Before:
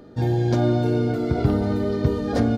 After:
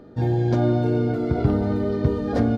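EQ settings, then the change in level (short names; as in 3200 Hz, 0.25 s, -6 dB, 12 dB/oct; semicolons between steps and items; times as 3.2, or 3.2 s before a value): high shelf 3700 Hz -10 dB; 0.0 dB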